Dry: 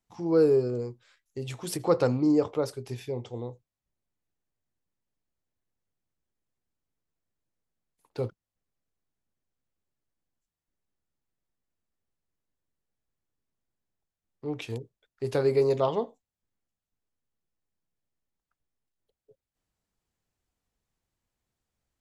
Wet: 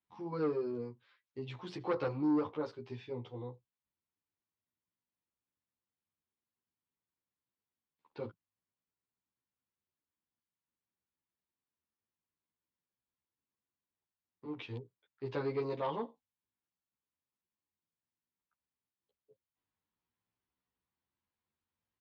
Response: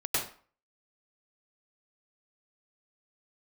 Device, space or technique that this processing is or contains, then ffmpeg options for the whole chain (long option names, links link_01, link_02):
barber-pole flanger into a guitar amplifier: -filter_complex "[0:a]asplit=2[link_01][link_02];[link_02]adelay=11.6,afreqshift=0.52[link_03];[link_01][link_03]amix=inputs=2:normalize=1,asoftclip=type=tanh:threshold=-21dB,highpass=91,equalizer=frequency=140:width_type=q:width=4:gain=-5,equalizer=frequency=450:width_type=q:width=4:gain=-3,equalizer=frequency=650:width_type=q:width=4:gain=-6,equalizer=frequency=1000:width_type=q:width=4:gain=5,lowpass=frequency=4000:width=0.5412,lowpass=frequency=4000:width=1.3066,volume=-3dB"